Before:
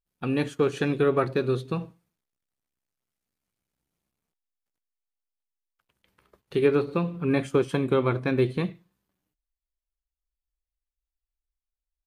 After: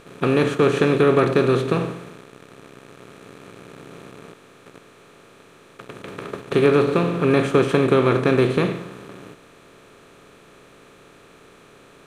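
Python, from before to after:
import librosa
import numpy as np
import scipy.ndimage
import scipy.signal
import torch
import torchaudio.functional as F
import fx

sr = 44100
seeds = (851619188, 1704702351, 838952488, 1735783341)

y = fx.bin_compress(x, sr, power=0.4)
y = y * 10.0 ** (2.0 / 20.0)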